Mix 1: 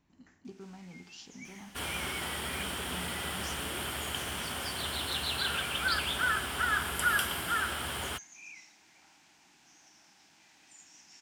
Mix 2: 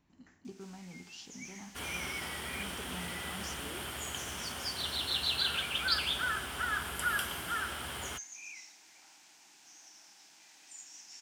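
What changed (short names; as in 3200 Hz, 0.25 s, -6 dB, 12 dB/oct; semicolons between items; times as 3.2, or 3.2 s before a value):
first sound: add tone controls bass -10 dB, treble +7 dB; second sound -7.5 dB; reverb: on, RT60 1.1 s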